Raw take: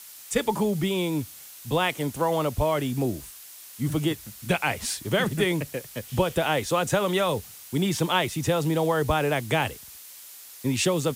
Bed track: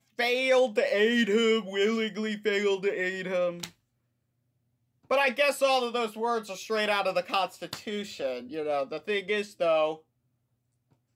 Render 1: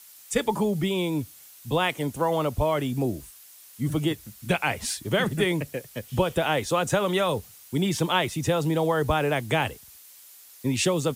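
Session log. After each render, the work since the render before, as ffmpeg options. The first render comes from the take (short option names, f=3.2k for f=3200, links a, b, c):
-af "afftdn=nr=6:nf=-45"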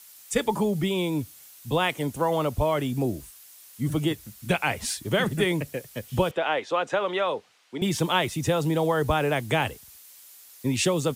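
-filter_complex "[0:a]asettb=1/sr,asplit=3[a][b][c];[a]atrim=end=6.314[d];[b]atrim=start=6.31:end=7.82,asetpts=PTS-STARTPTS,afade=t=in:d=0.004:c=qsin,afade=t=out:st=1.506:d=0.004:c=qsin,highpass=390,lowpass=3.2k[e];[c]atrim=start=7.816[f];[d][e]acrossfade=d=0.004:c1=hsin:c2=qsin[g];[g][f]acrossfade=d=0.004:c1=qsin:c2=hsin"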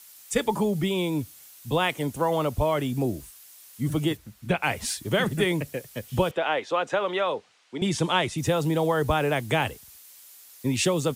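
-filter_complex "[0:a]asplit=3[a][b][c];[a]afade=t=out:st=4.16:d=0.02[d];[b]highshelf=f=4.1k:g=-12,afade=t=in:st=4.16:d=0.02,afade=t=out:st=4.62:d=0.02[e];[c]afade=t=in:st=4.62:d=0.02[f];[d][e][f]amix=inputs=3:normalize=0,asettb=1/sr,asplit=3[g][h][i];[g]atrim=end=7.234[j];[h]atrim=start=7.23:end=8.38,asetpts=PTS-STARTPTS,afade=t=in:d=0.004:c=qsin,afade=t=out:st=1.146:d=0.004:c=qsin,lowpass=f=9.7k:w=0.5412,lowpass=f=9.7k:w=1.3066[k];[i]atrim=start=8.376[l];[j][k]acrossfade=d=0.004:c1=hsin:c2=qsin[m];[m][l]acrossfade=d=0.004:c1=qsin:c2=hsin"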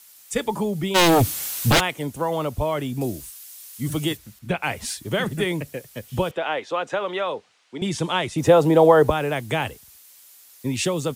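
-filter_complex "[0:a]asplit=3[a][b][c];[a]afade=t=out:st=0.94:d=0.02[d];[b]aeval=exprs='0.251*sin(PI/2*6.31*val(0)/0.251)':c=same,afade=t=in:st=0.94:d=0.02,afade=t=out:st=1.79:d=0.02[e];[c]afade=t=in:st=1.79:d=0.02[f];[d][e][f]amix=inputs=3:normalize=0,asettb=1/sr,asplit=3[g][h][i];[g]atrim=end=3.014[j];[h]atrim=start=3.01:end=4.39,asetpts=PTS-STARTPTS,afade=t=in:d=0.004:c=qsin,afade=t=out:st=1.376:d=0.004:c=qsin,highshelf=f=2.3k:g=8[k];[i]atrim=start=4.386[l];[j][k]acrossfade=d=0.004:c1=hsin:c2=qsin[m];[m][l]acrossfade=d=0.004:c1=qsin:c2=hsin,asettb=1/sr,asplit=3[n][o][p];[n]atrim=end=8.364[q];[o]atrim=start=8.36:end=9.1,asetpts=PTS-STARTPTS,afade=t=in:d=0.004:c=qsin,afade=t=out:st=0.736:d=0.004:c=qsin,equalizer=f=610:w=0.47:g=12[r];[p]atrim=start=9.096[s];[q][r]acrossfade=d=0.004:c1=hsin:c2=qsin[t];[t][s]acrossfade=d=0.004:c1=qsin:c2=hsin"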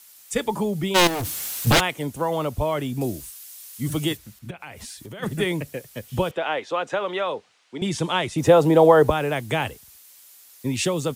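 -filter_complex "[0:a]asettb=1/sr,asplit=3[a][b][c];[a]atrim=end=1.074[d];[b]atrim=start=1.07:end=1.67,asetpts=PTS-STARTPTS,afade=t=in:d=0.004:c=qsin,afade=t=out:st=0.596:d=0.004:c=qsin,volume=26dB,asoftclip=hard,volume=-26dB[e];[c]atrim=start=1.666[f];[d][e]acrossfade=d=0.004:c1=hsin:c2=qsin[g];[g][f]acrossfade=d=0.004:c1=qsin:c2=hsin,asplit=3[h][i][j];[h]afade=t=out:st=4.49:d=0.02[k];[i]acompressor=threshold=-35dB:ratio=6:attack=3.2:release=140:knee=1:detection=peak,afade=t=in:st=4.49:d=0.02,afade=t=out:st=5.22:d=0.02[l];[j]afade=t=in:st=5.22:d=0.02[m];[k][l][m]amix=inputs=3:normalize=0"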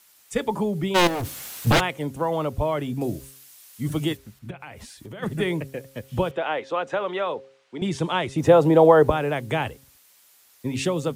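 -af "highshelf=f=3.4k:g=-8,bandreject=f=134.4:t=h:w=4,bandreject=f=268.8:t=h:w=4,bandreject=f=403.2:t=h:w=4,bandreject=f=537.6:t=h:w=4"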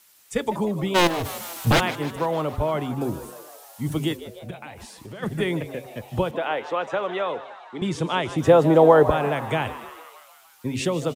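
-filter_complex "[0:a]asplit=8[a][b][c][d][e][f][g][h];[b]adelay=153,afreqshift=110,volume=-15dB[i];[c]adelay=306,afreqshift=220,volume=-18.9dB[j];[d]adelay=459,afreqshift=330,volume=-22.8dB[k];[e]adelay=612,afreqshift=440,volume=-26.6dB[l];[f]adelay=765,afreqshift=550,volume=-30.5dB[m];[g]adelay=918,afreqshift=660,volume=-34.4dB[n];[h]adelay=1071,afreqshift=770,volume=-38.3dB[o];[a][i][j][k][l][m][n][o]amix=inputs=8:normalize=0"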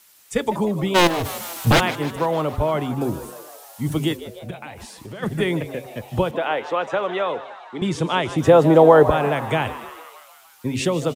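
-af "volume=3dB,alimiter=limit=-2dB:level=0:latency=1"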